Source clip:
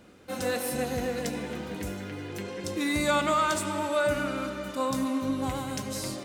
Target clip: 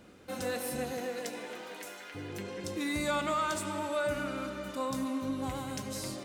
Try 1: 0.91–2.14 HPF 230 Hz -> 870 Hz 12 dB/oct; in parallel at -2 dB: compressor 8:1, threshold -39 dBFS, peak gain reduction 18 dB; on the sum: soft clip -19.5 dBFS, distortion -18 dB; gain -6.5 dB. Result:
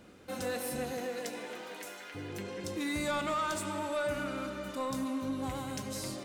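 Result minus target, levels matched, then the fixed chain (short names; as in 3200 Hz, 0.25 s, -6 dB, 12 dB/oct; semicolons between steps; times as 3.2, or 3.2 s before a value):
soft clip: distortion +11 dB
0.91–2.14 HPF 230 Hz -> 870 Hz 12 dB/oct; in parallel at -2 dB: compressor 8:1, threshold -39 dBFS, peak gain reduction 18 dB; on the sum: soft clip -12.5 dBFS, distortion -29 dB; gain -6.5 dB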